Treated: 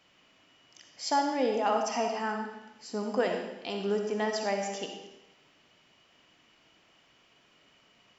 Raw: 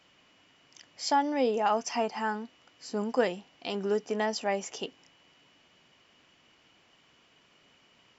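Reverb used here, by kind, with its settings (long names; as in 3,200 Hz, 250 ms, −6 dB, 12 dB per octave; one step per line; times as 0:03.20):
comb and all-pass reverb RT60 0.95 s, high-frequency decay 0.95×, pre-delay 20 ms, DRR 3 dB
level −2 dB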